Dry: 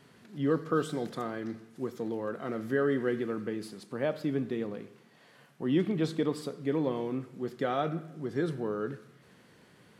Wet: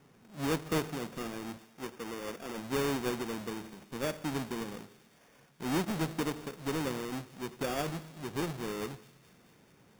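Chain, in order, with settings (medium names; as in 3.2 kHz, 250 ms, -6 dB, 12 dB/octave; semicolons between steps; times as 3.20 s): square wave that keeps the level; 1.58–2.58 s: bass shelf 140 Hz -12 dB; sample-and-hold 11×; on a send: feedback echo behind a high-pass 215 ms, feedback 73%, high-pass 2.1 kHz, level -20 dB; on the sum: trim -8 dB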